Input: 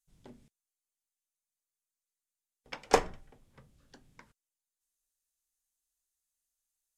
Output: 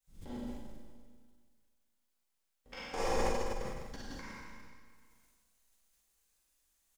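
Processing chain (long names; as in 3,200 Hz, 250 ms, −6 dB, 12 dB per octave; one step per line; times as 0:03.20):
peak hold with a decay on every bin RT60 0.57 s
low-shelf EQ 160 Hz +9.5 dB
comb filter 3.7 ms, depth 30%
reversed playback
downward compressor 16 to 1, threshold −33 dBFS, peak gain reduction 20.5 dB
reversed playback
log-companded quantiser 8 bits
slap from a distant wall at 35 metres, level −14 dB
four-comb reverb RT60 1.7 s, combs from 33 ms, DRR −9 dB
level that may fall only so fast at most 32 dB per second
level −4 dB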